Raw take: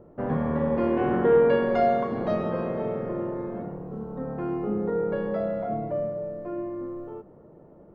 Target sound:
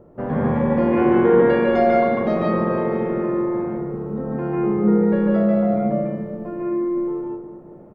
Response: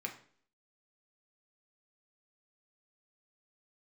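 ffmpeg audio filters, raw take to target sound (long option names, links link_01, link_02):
-filter_complex "[0:a]asplit=2[link_01][link_02];[link_02]adelay=198,lowpass=frequency=1600:poles=1,volume=-11dB,asplit=2[link_03][link_04];[link_04]adelay=198,lowpass=frequency=1600:poles=1,volume=0.49,asplit=2[link_05][link_06];[link_06]adelay=198,lowpass=frequency=1600:poles=1,volume=0.49,asplit=2[link_07][link_08];[link_08]adelay=198,lowpass=frequency=1600:poles=1,volume=0.49,asplit=2[link_09][link_10];[link_10]adelay=198,lowpass=frequency=1600:poles=1,volume=0.49[link_11];[link_01][link_03][link_05][link_07][link_09][link_11]amix=inputs=6:normalize=0,asplit=2[link_12][link_13];[1:a]atrim=start_sample=2205,adelay=146[link_14];[link_13][link_14]afir=irnorm=-1:irlink=0,volume=2dB[link_15];[link_12][link_15]amix=inputs=2:normalize=0,volume=2.5dB"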